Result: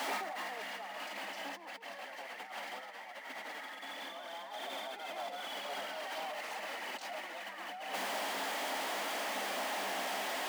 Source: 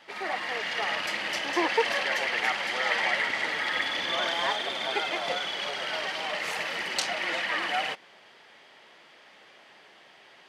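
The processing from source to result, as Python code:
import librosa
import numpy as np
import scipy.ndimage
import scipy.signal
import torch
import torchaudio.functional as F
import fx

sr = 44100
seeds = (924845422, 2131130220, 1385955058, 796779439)

y = x + 0.5 * 10.0 ** (-28.0 / 20.0) * np.sign(x)
y = fx.over_compress(y, sr, threshold_db=-31.0, ratio=-0.5)
y = scipy.signal.sosfilt(scipy.signal.cheby1(6, 9, 190.0, 'highpass', fs=sr, output='sos'), y)
y = y * librosa.db_to_amplitude(-3.0)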